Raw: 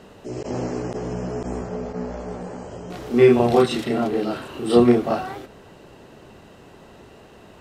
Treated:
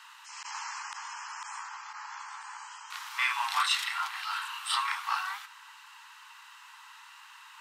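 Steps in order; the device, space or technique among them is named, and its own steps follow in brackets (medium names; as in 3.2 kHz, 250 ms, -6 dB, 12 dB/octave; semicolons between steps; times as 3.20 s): parallel distortion (in parallel at -8 dB: hard clipper -18 dBFS, distortion -6 dB); on the sum: steep high-pass 900 Hz 96 dB/octave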